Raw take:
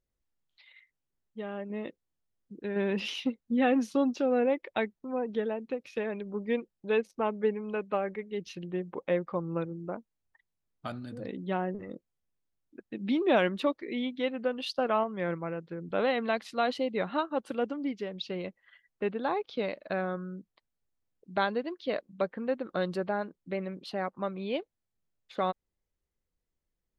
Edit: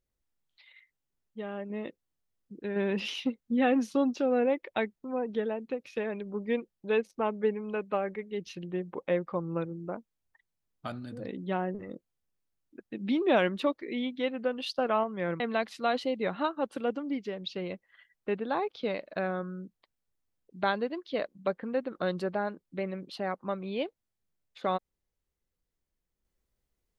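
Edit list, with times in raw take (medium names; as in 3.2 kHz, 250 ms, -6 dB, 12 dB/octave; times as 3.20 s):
15.40–16.14 s: delete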